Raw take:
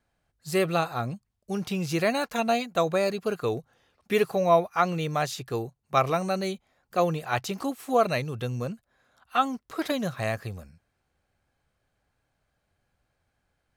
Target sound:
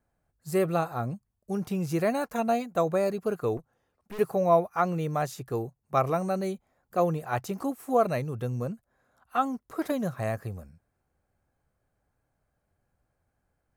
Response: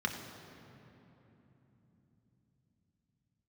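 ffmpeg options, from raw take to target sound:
-filter_complex "[0:a]equalizer=frequency=3500:width_type=o:width=1.8:gain=-12.5,asettb=1/sr,asplit=3[link_01][link_02][link_03];[link_01]atrim=end=3.574[link_04];[link_02]atrim=start=3.57:end=4.19,asetpts=PTS-STARTPTS,afade=type=in:duration=0.004:curve=qsin,afade=type=out:start_time=0.616:duration=0.004:curve=qsin,aeval=exprs='(tanh(79.4*val(0)+0.8)-tanh(0.8))/79.4':channel_layout=same[link_05];[link_03]atrim=start=4.186[link_06];[link_04][link_05]acrossfade=duration=0.004:curve1=hsin:curve2=qsin[link_07];[link_07][link_06]acrossfade=duration=0.004:curve1=qsin:curve2=hsin"

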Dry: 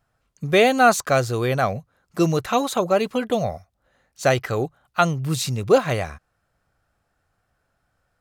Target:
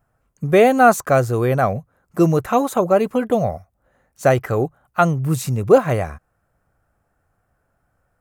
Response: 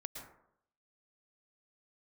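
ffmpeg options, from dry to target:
-af "equalizer=frequency=4000:width_type=o:width=1.6:gain=-14,volume=4.5dB"

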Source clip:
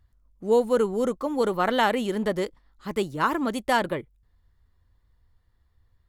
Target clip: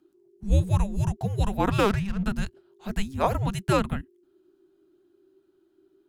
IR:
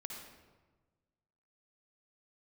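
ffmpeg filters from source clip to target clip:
-filter_complex "[0:a]asplit=3[link_01][link_02][link_03];[link_01]afade=type=out:start_time=1.7:duration=0.02[link_04];[link_02]adynamicsmooth=sensitivity=8:basefreq=700,afade=type=in:start_time=1.7:duration=0.02,afade=type=out:start_time=2.24:duration=0.02[link_05];[link_03]afade=type=in:start_time=2.24:duration=0.02[link_06];[link_04][link_05][link_06]amix=inputs=3:normalize=0,afreqshift=-400"

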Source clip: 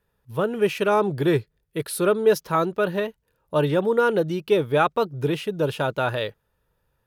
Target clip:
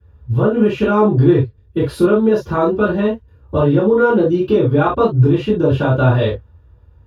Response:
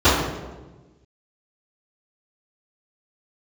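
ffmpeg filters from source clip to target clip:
-filter_complex "[0:a]bass=frequency=250:gain=12,treble=frequency=4000:gain=-3,acompressor=threshold=-21dB:ratio=6[link_01];[1:a]atrim=start_sample=2205,atrim=end_sample=3528[link_02];[link_01][link_02]afir=irnorm=-1:irlink=0,volume=-14.5dB"

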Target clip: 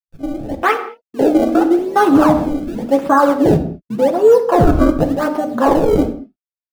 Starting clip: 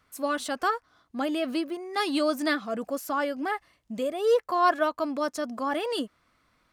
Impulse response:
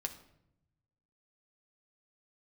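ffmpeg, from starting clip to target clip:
-filter_complex "[0:a]bandreject=frequency=50:width_type=h:width=6,bandreject=frequency=100:width_type=h:width=6,bandreject=frequency=150:width_type=h:width=6,bandreject=frequency=200:width_type=h:width=6,bandreject=frequency=250:width_type=h:width=6,bandreject=frequency=300:width_type=h:width=6,acrusher=samples=28:mix=1:aa=0.000001:lfo=1:lforange=44.8:lforate=0.88,asettb=1/sr,asplit=3[link_01][link_02][link_03];[link_01]atrim=end=2.404[link_04];[link_02]atrim=start=2.4:end=2.91,asetpts=PTS-STARTPTS,afade=type=in:duration=0.004:curve=qsin,afade=type=out:start_time=0.506:duration=0.004:curve=qsin,asoftclip=type=hard:threshold=-34.5dB[link_05];[link_03]atrim=start=2.906[link_06];[link_04][link_05]acrossfade=duration=0.004:curve1=hsin:curve2=qsin[link_07];[link_07][link_06]acrossfade=duration=0.004:curve1=qsin:curve2=hsin,acrusher=bits=7:mix=0:aa=0.000001,afwtdn=0.0355[link_08];[1:a]atrim=start_sample=2205,afade=type=out:start_time=0.28:duration=0.01,atrim=end_sample=12789[link_09];[link_08][link_09]afir=irnorm=-1:irlink=0,dynaudnorm=framelen=180:gausssize=9:maxgain=15dB,asettb=1/sr,asplit=3[link_10][link_11][link_12];[link_10]atrim=end=0.634[link_13];[link_11]atrim=start=0.63:end=1.79,asetpts=PTS-STARTPTS,afade=type=in:duration=0.004:curve=qsin,afade=type=out:start_time=1.156:duration=0.004:curve=qsin,lowshelf=frequency=240:width_type=q:width=1.5:gain=-11[link_14];[link_12]atrim=start=1.786[link_15];[link_13][link_14]acrossfade=duration=0.004:curve1=hsin:curve2=qsin[link_16];[link_16][link_15]acrossfade=duration=0.004:curve1=qsin:curve2=hsin,alimiter=level_in=7dB:limit=-1dB:release=50:level=0:latency=1,volume=-1dB"

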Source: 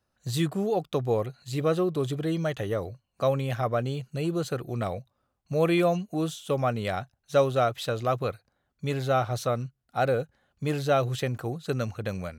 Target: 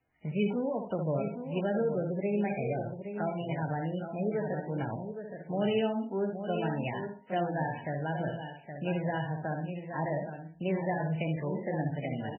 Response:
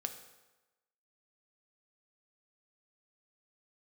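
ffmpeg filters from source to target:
-filter_complex "[0:a]acrossover=split=5300[link_01][link_02];[link_02]acompressor=threshold=-57dB:ratio=4:attack=1:release=60[link_03];[link_01][link_03]amix=inputs=2:normalize=0,asetrate=55563,aresample=44100,atempo=0.793701,lowshelf=frequency=370:gain=-9.5,bandreject=frequency=85.23:width_type=h:width=4,bandreject=frequency=170.46:width_type=h:width=4,bandreject=frequency=255.69:width_type=h:width=4,bandreject=frequency=340.92:width_type=h:width=4,bandreject=frequency=426.15:width_type=h:width=4,bandreject=frequency=511.38:width_type=h:width=4,bandreject=frequency=596.61:width_type=h:width=4,bandreject=frequency=681.84:width_type=h:width=4,bandreject=frequency=767.07:width_type=h:width=4,bandreject=frequency=852.3:width_type=h:width=4,bandreject=frequency=937.53:width_type=h:width=4,bandreject=frequency=1022.76:width_type=h:width=4,asplit=2[link_04][link_05];[link_05]aecho=0:1:63|126|189:0.501|0.13|0.0339[link_06];[link_04][link_06]amix=inputs=2:normalize=0,acrossover=split=410|3000[link_07][link_08][link_09];[link_08]acompressor=threshold=-42dB:ratio=2.5[link_10];[link_07][link_10][link_09]amix=inputs=3:normalize=0,equalizer=frequency=1200:width_type=o:width=1.5:gain=-7,asplit=2[link_11][link_12];[link_12]aecho=0:1:819:0.376[link_13];[link_11][link_13]amix=inputs=2:normalize=0,volume=5dB" -ar 16000 -c:a libmp3lame -b:a 8k

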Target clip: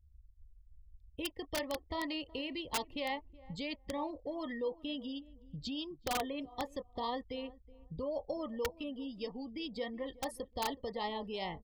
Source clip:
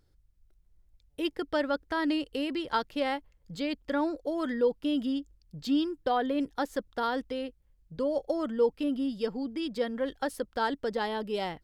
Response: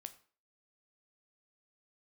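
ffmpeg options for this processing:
-filter_complex "[0:a]lowshelf=frequency=200:gain=7.5,afftdn=noise_reduction=21:noise_floor=-48,acrossover=split=600|1600[link_01][link_02][link_03];[link_01]acompressor=threshold=-39dB:ratio=8[link_04];[link_02]flanger=delay=19:depth=7.8:speed=1.8[link_05];[link_04][link_05][link_03]amix=inputs=3:normalize=0,asuperstop=centerf=1500:order=12:qfactor=2.8,asplit=2[link_06][link_07];[link_07]adelay=372,lowpass=frequency=860:poles=1,volume=-19dB,asplit=2[link_08][link_09];[link_09]adelay=372,lowpass=frequency=860:poles=1,volume=0.23[link_10];[link_08][link_10]amix=inputs=2:normalize=0[link_11];[link_06][link_11]amix=inputs=2:normalize=0,aeval=exprs='(mod(16.8*val(0)+1,2)-1)/16.8':channel_layout=same,equalizer=frequency=74:width=2.6:gain=10,volume=-2.5dB"

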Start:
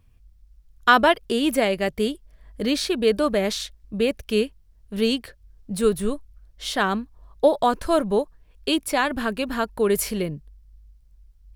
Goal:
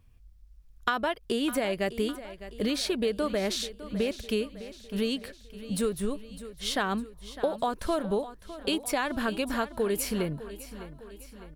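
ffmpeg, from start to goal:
ffmpeg -i in.wav -af "acompressor=threshold=-22dB:ratio=10,aecho=1:1:606|1212|1818|2424|3030:0.188|0.0998|0.0529|0.028|0.0149,volume=-2dB" out.wav

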